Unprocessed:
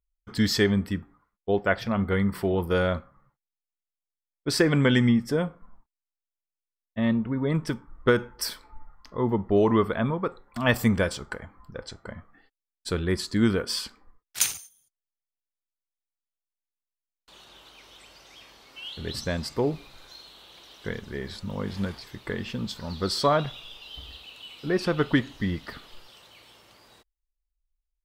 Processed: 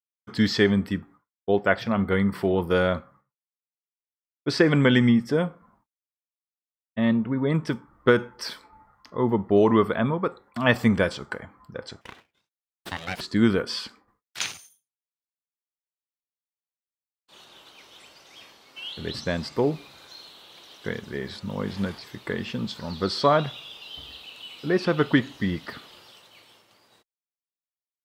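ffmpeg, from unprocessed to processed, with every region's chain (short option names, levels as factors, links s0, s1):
-filter_complex "[0:a]asettb=1/sr,asplit=3[s0][s1][s2];[s0]atrim=end=12.014[s3];[s1]atrim=start=12.01:end=13.21,asetpts=PTS-STARTPTS,afade=t=in:d=0.004:c=qsin,afade=t=out:st=1.196:d=0.004:c=qsin,highpass=260,tiltshelf=f=1100:g=-4,aeval=exprs='abs(val(0))':c=same[s4];[s2]atrim=start=13.206[s5];[s3][s4]acrossfade=d=0.004:c1=hsin:c2=qsin[s6];[s6][s5]acrossfade=d=0.004:c1=qsin:c2=hsin,agate=range=0.0224:threshold=0.00355:ratio=3:detection=peak,acrossover=split=5100[s7][s8];[s8]acompressor=threshold=0.00251:ratio=4:attack=1:release=60[s9];[s7][s9]amix=inputs=2:normalize=0,highpass=110,volume=1.33"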